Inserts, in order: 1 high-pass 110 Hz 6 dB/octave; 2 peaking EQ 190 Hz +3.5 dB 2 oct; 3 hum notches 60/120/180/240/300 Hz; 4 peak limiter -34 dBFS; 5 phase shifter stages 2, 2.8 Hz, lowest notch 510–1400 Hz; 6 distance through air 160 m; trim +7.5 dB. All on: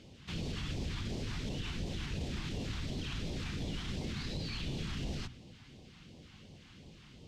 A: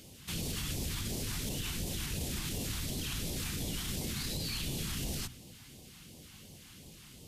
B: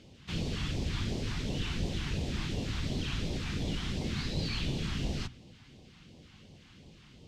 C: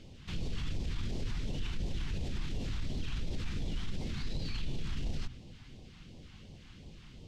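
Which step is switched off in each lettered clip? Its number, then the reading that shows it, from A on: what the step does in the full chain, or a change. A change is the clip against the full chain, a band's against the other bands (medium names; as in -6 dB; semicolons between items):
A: 6, 8 kHz band +13.5 dB; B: 4, mean gain reduction 3.0 dB; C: 1, 125 Hz band +3.0 dB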